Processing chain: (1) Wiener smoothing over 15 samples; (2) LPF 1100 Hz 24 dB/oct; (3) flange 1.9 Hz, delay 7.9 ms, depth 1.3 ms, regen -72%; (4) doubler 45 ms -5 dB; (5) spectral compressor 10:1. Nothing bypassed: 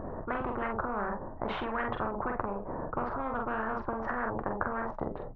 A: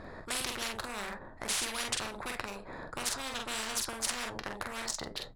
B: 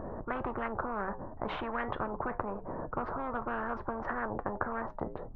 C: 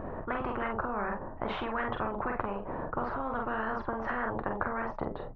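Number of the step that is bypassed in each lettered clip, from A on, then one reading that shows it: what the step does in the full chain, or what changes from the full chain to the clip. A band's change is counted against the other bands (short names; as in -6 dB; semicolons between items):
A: 2, 4 kHz band +25.5 dB; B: 4, crest factor change +1.5 dB; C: 1, 4 kHz band +1.5 dB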